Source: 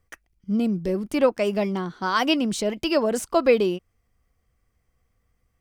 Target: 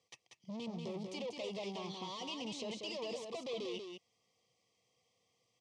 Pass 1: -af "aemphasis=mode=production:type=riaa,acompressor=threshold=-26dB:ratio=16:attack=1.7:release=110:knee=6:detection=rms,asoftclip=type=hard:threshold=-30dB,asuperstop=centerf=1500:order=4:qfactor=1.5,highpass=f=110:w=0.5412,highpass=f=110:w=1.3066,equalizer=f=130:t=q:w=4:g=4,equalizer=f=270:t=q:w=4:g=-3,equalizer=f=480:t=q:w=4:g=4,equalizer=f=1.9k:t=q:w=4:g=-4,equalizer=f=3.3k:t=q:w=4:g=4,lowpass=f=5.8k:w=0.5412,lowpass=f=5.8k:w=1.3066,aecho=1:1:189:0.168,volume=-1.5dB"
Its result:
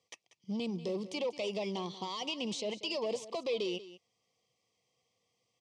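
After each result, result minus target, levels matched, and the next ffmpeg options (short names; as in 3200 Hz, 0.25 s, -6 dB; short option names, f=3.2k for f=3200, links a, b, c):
echo-to-direct -10.5 dB; hard clip: distortion -8 dB
-af "aemphasis=mode=production:type=riaa,acompressor=threshold=-26dB:ratio=16:attack=1.7:release=110:knee=6:detection=rms,asoftclip=type=hard:threshold=-30dB,asuperstop=centerf=1500:order=4:qfactor=1.5,highpass=f=110:w=0.5412,highpass=f=110:w=1.3066,equalizer=f=130:t=q:w=4:g=4,equalizer=f=270:t=q:w=4:g=-3,equalizer=f=480:t=q:w=4:g=4,equalizer=f=1.9k:t=q:w=4:g=-4,equalizer=f=3.3k:t=q:w=4:g=4,lowpass=f=5.8k:w=0.5412,lowpass=f=5.8k:w=1.3066,aecho=1:1:189:0.562,volume=-1.5dB"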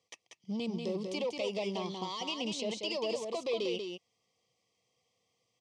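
hard clip: distortion -8 dB
-af "aemphasis=mode=production:type=riaa,acompressor=threshold=-26dB:ratio=16:attack=1.7:release=110:knee=6:detection=rms,asoftclip=type=hard:threshold=-40dB,asuperstop=centerf=1500:order=4:qfactor=1.5,highpass=f=110:w=0.5412,highpass=f=110:w=1.3066,equalizer=f=130:t=q:w=4:g=4,equalizer=f=270:t=q:w=4:g=-3,equalizer=f=480:t=q:w=4:g=4,equalizer=f=1.9k:t=q:w=4:g=-4,equalizer=f=3.3k:t=q:w=4:g=4,lowpass=f=5.8k:w=0.5412,lowpass=f=5.8k:w=1.3066,aecho=1:1:189:0.562,volume=-1.5dB"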